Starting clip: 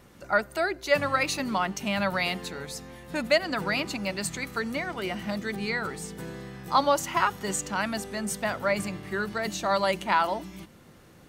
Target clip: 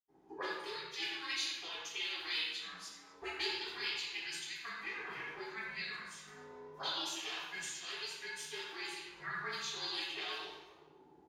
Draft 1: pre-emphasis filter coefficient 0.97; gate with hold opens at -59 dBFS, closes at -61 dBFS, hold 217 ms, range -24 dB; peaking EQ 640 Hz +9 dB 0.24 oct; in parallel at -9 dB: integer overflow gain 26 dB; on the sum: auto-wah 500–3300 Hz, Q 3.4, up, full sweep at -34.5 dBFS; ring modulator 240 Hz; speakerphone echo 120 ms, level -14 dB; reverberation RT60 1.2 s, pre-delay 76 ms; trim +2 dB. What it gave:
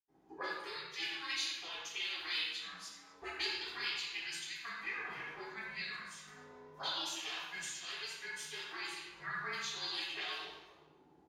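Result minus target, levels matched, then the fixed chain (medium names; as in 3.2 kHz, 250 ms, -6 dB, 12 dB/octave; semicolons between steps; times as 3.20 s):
500 Hz band -3.0 dB
pre-emphasis filter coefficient 0.97; gate with hold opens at -59 dBFS, closes at -61 dBFS, hold 217 ms, range -24 dB; peaking EQ 640 Hz +15.5 dB 0.24 oct; in parallel at -9 dB: integer overflow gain 26 dB; on the sum: auto-wah 500–3300 Hz, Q 3.4, up, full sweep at -34.5 dBFS; ring modulator 240 Hz; speakerphone echo 120 ms, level -14 dB; reverberation RT60 1.2 s, pre-delay 76 ms; trim +2 dB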